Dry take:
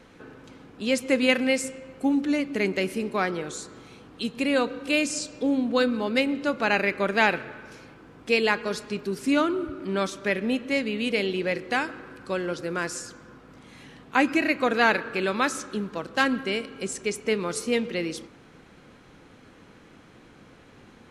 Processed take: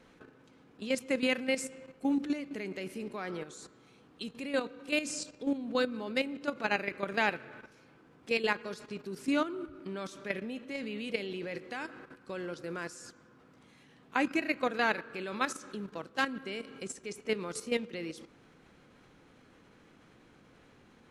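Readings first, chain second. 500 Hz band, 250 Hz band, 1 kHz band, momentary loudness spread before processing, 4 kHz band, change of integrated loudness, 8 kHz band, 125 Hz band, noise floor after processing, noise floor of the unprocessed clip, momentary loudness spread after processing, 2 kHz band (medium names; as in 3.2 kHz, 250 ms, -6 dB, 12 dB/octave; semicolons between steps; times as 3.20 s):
-9.0 dB, -9.0 dB, -8.5 dB, 11 LU, -8.5 dB, -9.0 dB, -8.5 dB, -10.0 dB, -61 dBFS, -52 dBFS, 13 LU, -8.5 dB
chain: level held to a coarse grid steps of 11 dB; hum notches 50/100 Hz; trim -5 dB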